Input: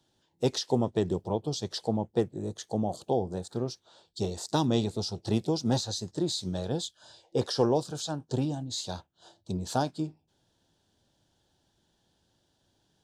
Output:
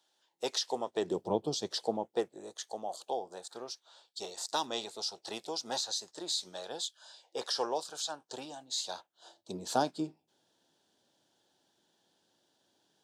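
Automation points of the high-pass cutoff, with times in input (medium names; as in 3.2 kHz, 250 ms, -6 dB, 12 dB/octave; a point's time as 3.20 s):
0.87 s 680 Hz
1.32 s 190 Hz
2.59 s 780 Hz
8.67 s 780 Hz
9.80 s 270 Hz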